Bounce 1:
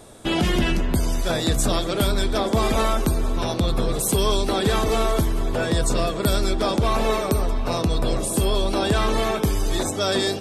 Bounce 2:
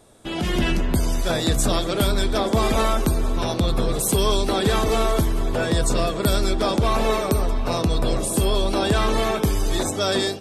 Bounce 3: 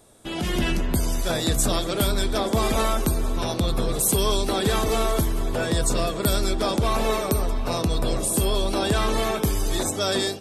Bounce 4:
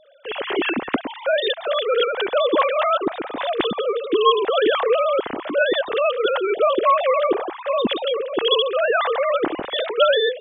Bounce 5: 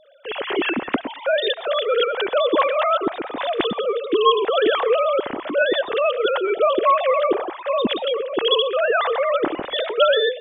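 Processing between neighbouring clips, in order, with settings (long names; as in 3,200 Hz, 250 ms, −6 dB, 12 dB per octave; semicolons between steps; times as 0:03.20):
automatic gain control gain up to 10.5 dB; level −8 dB
high-shelf EQ 7,900 Hz +7.5 dB; level −2.5 dB
three sine waves on the formant tracks; level +2 dB
convolution reverb, pre-delay 80 ms, DRR 20 dB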